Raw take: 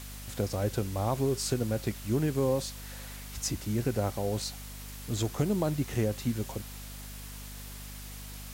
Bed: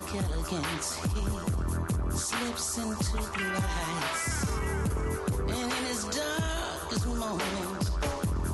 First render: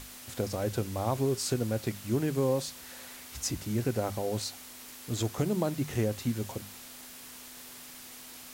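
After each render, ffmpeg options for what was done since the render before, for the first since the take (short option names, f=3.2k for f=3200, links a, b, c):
-af "bandreject=f=50:t=h:w=6,bandreject=f=100:t=h:w=6,bandreject=f=150:t=h:w=6,bandreject=f=200:t=h:w=6"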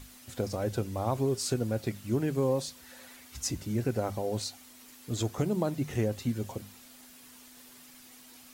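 -af "afftdn=nr=8:nf=-48"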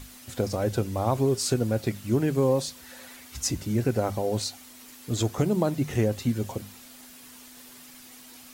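-af "volume=5dB"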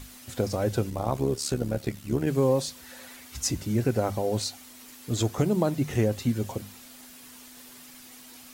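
-filter_complex "[0:a]asettb=1/sr,asplit=3[a][b][c];[a]atrim=end=0.904[d];[b]atrim=start=0.9:end=2.27,asetpts=PTS-STARTPTS,afade=t=in:d=0.004:c=qsin,afade=t=out:st=1.366:d=0.004:c=qsin,tremolo=f=71:d=0.71[e];[c]atrim=start=2.266[f];[d][e]acrossfade=d=0.004:c1=hsin:c2=qsin[g];[g][f]acrossfade=d=0.004:c1=qsin:c2=hsin"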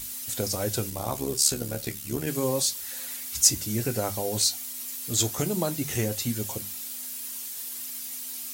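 -af "flanger=delay=9.2:depth=2.5:regen=-66:speed=0.29:shape=sinusoidal,crystalizer=i=5.5:c=0"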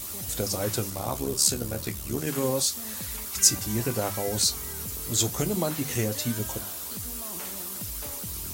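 -filter_complex "[1:a]volume=-11dB[a];[0:a][a]amix=inputs=2:normalize=0"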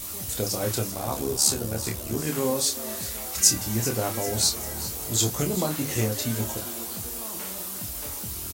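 -filter_complex "[0:a]asplit=2[a][b];[b]adelay=27,volume=-5.5dB[c];[a][c]amix=inputs=2:normalize=0,asplit=6[d][e][f][g][h][i];[e]adelay=391,afreqshift=120,volume=-14dB[j];[f]adelay=782,afreqshift=240,volume=-19.4dB[k];[g]adelay=1173,afreqshift=360,volume=-24.7dB[l];[h]adelay=1564,afreqshift=480,volume=-30.1dB[m];[i]adelay=1955,afreqshift=600,volume=-35.4dB[n];[d][j][k][l][m][n]amix=inputs=6:normalize=0"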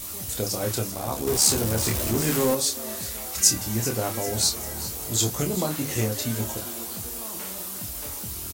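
-filter_complex "[0:a]asettb=1/sr,asplit=3[a][b][c];[a]atrim=end=1.274[d];[b]atrim=start=1.27:end=2.55,asetpts=PTS-STARTPTS,afade=t=in:d=0.004:c=qsin,afade=t=out:st=1.276:d=0.004:c=qsin,aeval=exprs='val(0)+0.5*0.0631*sgn(val(0))':c=same[e];[c]atrim=start=2.546[f];[d][e]acrossfade=d=0.004:c1=hsin:c2=qsin[g];[g][f]acrossfade=d=0.004:c1=qsin:c2=hsin"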